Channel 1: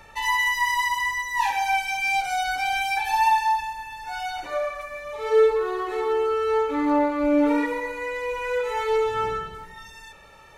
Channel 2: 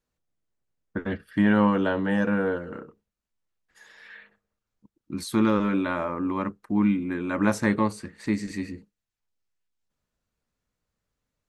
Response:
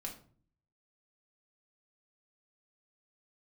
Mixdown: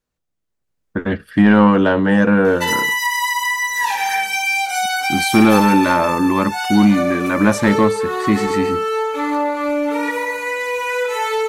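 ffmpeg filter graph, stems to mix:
-filter_complex "[0:a]highpass=f=500:p=1,highshelf=f=5.4k:g=8,acompressor=threshold=-25dB:ratio=6,adelay=2450,volume=2dB[a];[1:a]dynaudnorm=f=100:g=17:m=15.5dB,volume=-5dB[b];[a][b]amix=inputs=2:normalize=0,acontrast=85"

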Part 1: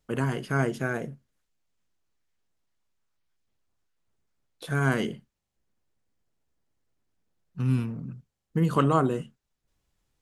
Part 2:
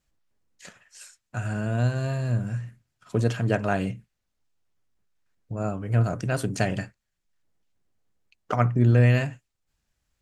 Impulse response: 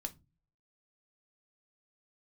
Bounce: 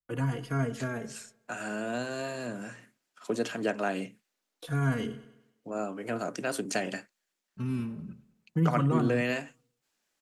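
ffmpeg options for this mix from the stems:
-filter_complex "[0:a]agate=range=-22dB:threshold=-52dB:ratio=16:detection=peak,asplit=2[a][b];[b]adelay=3.6,afreqshift=-0.46[c];[a][c]amix=inputs=2:normalize=1,volume=-0.5dB,asplit=2[d][e];[e]volume=-18.5dB[f];[1:a]highpass=f=250:w=0.5412,highpass=f=250:w=1.3066,adynamicequalizer=threshold=0.00794:dfrequency=2300:dqfactor=0.7:tfrequency=2300:tqfactor=0.7:attack=5:release=100:ratio=0.375:range=1.5:mode=boostabove:tftype=highshelf,adelay=150,volume=1.5dB[g];[f]aecho=0:1:99|198|297|396|495|594:1|0.46|0.212|0.0973|0.0448|0.0206[h];[d][g][h]amix=inputs=3:normalize=0,acrossover=split=240[i][j];[j]acompressor=threshold=-37dB:ratio=1.5[k];[i][k]amix=inputs=2:normalize=0"

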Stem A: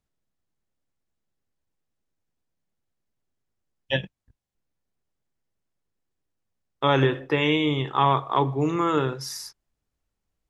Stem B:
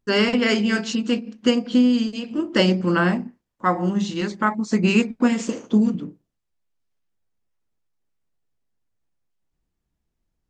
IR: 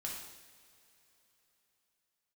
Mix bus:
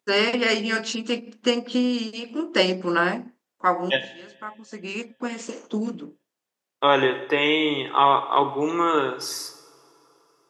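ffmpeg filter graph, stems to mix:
-filter_complex "[0:a]volume=1.5dB,asplit=3[a][b][c];[b]volume=-7.5dB[d];[1:a]volume=0.5dB[e];[c]apad=whole_len=463043[f];[e][f]sidechaincompress=threshold=-39dB:ratio=4:attack=7.7:release=1300[g];[2:a]atrim=start_sample=2205[h];[d][h]afir=irnorm=-1:irlink=0[i];[a][g][i]amix=inputs=3:normalize=0,highpass=350"

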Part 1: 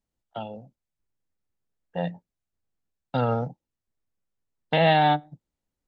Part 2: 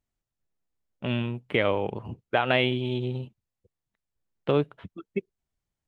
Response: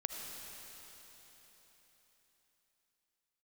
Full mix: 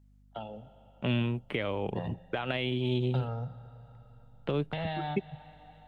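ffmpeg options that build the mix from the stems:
-filter_complex "[0:a]asubboost=boost=8.5:cutoff=93,acompressor=threshold=-32dB:ratio=3,volume=-6dB,asplit=2[a][b];[b]volume=-8dB[c];[1:a]alimiter=limit=-16.5dB:level=0:latency=1:release=284,volume=1dB[d];[2:a]atrim=start_sample=2205[e];[c][e]afir=irnorm=-1:irlink=0[f];[a][d][f]amix=inputs=3:normalize=0,acrossover=split=260|3000[g][h][i];[h]acompressor=threshold=-32dB:ratio=3[j];[g][j][i]amix=inputs=3:normalize=0,aeval=exprs='val(0)+0.00112*(sin(2*PI*50*n/s)+sin(2*PI*2*50*n/s)/2+sin(2*PI*3*50*n/s)/3+sin(2*PI*4*50*n/s)/4+sin(2*PI*5*50*n/s)/5)':c=same"

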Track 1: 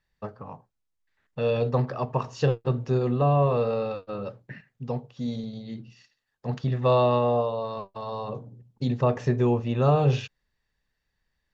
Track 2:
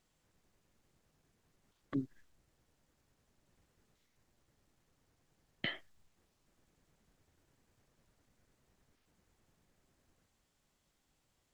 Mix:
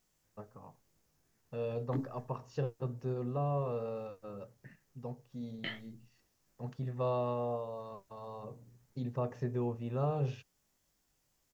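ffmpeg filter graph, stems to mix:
-filter_complex "[0:a]highshelf=f=3.1k:g=-12,adelay=150,volume=-12dB[a];[1:a]flanger=delay=18:depth=3.7:speed=2.9,volume=1dB[b];[a][b]amix=inputs=2:normalize=0,aexciter=amount=1.6:drive=7.1:freq=5.1k"

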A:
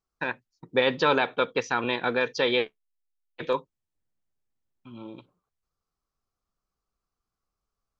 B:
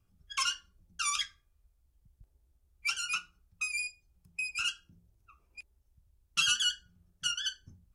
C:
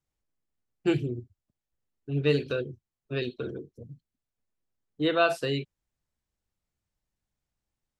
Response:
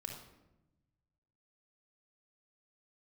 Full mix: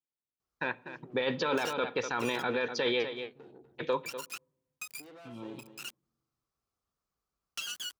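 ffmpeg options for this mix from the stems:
-filter_complex "[0:a]adelay=400,volume=-2.5dB,asplit=3[a][b][c];[b]volume=-17.5dB[d];[c]volume=-13dB[e];[1:a]aemphasis=mode=reproduction:type=50fm,crystalizer=i=3.5:c=0,aeval=exprs='val(0)*gte(abs(val(0)),0.0447)':c=same,adelay=1200,volume=-6dB[f];[2:a]aeval=exprs='(tanh(44.7*val(0)+0.75)-tanh(0.75))/44.7':c=same,highshelf=f=3k:g=-9.5,acompressor=threshold=-40dB:ratio=4,volume=-9dB,asplit=4[g][h][i][j];[h]volume=-14dB[k];[i]volume=-11dB[l];[j]apad=whole_len=403101[m];[f][m]sidechaincompress=threshold=-59dB:ratio=8:attack=11:release=533[n];[n][g]amix=inputs=2:normalize=0,highpass=180,acompressor=threshold=-38dB:ratio=3,volume=0dB[o];[3:a]atrim=start_sample=2205[p];[d][k]amix=inputs=2:normalize=0[q];[q][p]afir=irnorm=-1:irlink=0[r];[e][l]amix=inputs=2:normalize=0,aecho=0:1:246:1[s];[a][o][r][s]amix=inputs=4:normalize=0,highpass=50,alimiter=limit=-20dB:level=0:latency=1:release=13"

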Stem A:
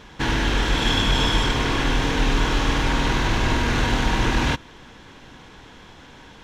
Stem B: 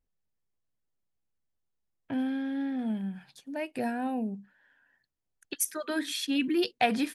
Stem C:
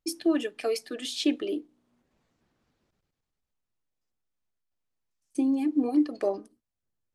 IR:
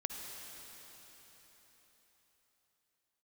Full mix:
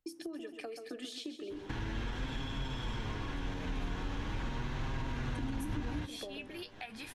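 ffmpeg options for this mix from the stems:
-filter_complex "[0:a]adelay=1500,volume=-2.5dB[a];[1:a]tiltshelf=f=730:g=-9,volume=-5.5dB[b];[2:a]acompressor=threshold=-32dB:ratio=6,volume=-2.5dB,asplit=2[c][d];[d]volume=-9.5dB[e];[a][b]amix=inputs=2:normalize=0,flanger=delay=7.4:depth=3.9:regen=42:speed=0.4:shape=sinusoidal,alimiter=level_in=1dB:limit=-24dB:level=0:latency=1:release=278,volume=-1dB,volume=0dB[f];[e]aecho=0:1:133|266|399|532|665|798:1|0.46|0.212|0.0973|0.0448|0.0206[g];[c][f][g]amix=inputs=3:normalize=0,equalizer=f=9.9k:t=o:w=2.8:g=-5,acrossover=split=200[h][i];[i]acompressor=threshold=-41dB:ratio=6[j];[h][j]amix=inputs=2:normalize=0"

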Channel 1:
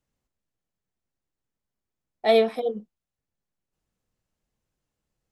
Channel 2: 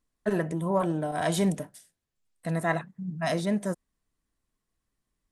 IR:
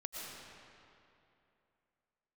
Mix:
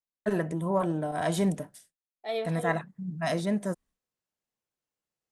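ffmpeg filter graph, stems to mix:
-filter_complex "[0:a]highpass=f=420:p=1,volume=-6dB,afade=t=in:st=2.15:d=0.54:silence=0.266073[a];[1:a]agate=range=-33dB:threshold=-51dB:ratio=3:detection=peak,adynamicequalizer=threshold=0.00794:dfrequency=1800:dqfactor=0.7:tfrequency=1800:tqfactor=0.7:attack=5:release=100:ratio=0.375:range=1.5:mode=cutabove:tftype=highshelf,volume=-1dB[b];[a][b]amix=inputs=2:normalize=0"

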